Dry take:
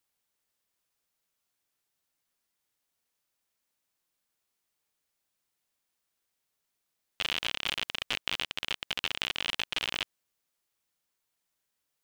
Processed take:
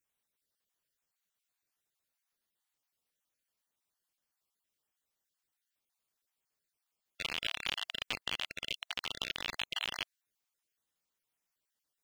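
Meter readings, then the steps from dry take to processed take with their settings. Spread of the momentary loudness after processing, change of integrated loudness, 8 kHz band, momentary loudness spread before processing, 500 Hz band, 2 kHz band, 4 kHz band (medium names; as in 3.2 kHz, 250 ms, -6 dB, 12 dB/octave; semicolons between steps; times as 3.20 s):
4 LU, -5.0 dB, -5.0 dB, 4 LU, -5.0 dB, -5.0 dB, -5.0 dB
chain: random holes in the spectrogram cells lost 29%; trim -3.5 dB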